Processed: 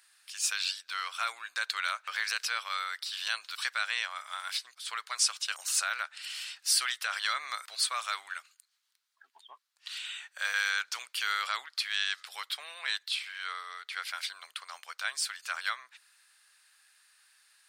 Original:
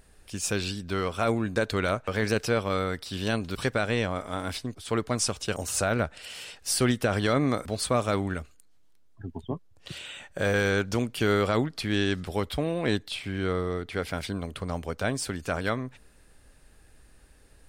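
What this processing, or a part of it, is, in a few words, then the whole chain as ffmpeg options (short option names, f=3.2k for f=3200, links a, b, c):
headphones lying on a table: -af "highpass=f=1.2k:w=0.5412,highpass=f=1.2k:w=1.3066,equalizer=f=4.3k:t=o:w=0.59:g=5"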